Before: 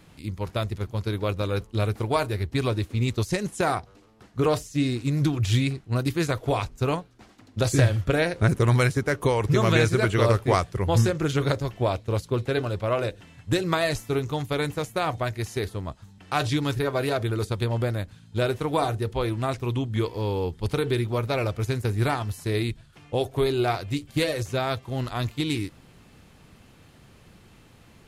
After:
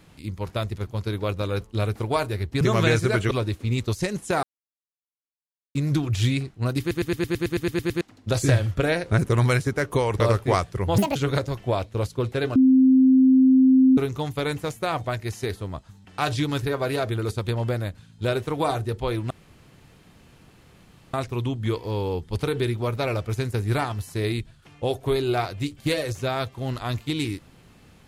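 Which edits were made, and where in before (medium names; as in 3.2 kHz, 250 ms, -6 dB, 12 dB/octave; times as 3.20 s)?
3.73–5.05 s: mute
6.10 s: stutter in place 0.11 s, 11 plays
9.50–10.20 s: move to 2.61 s
10.98–11.29 s: speed 177%
12.69–14.11 s: bleep 261 Hz -12 dBFS
19.44 s: insert room tone 1.83 s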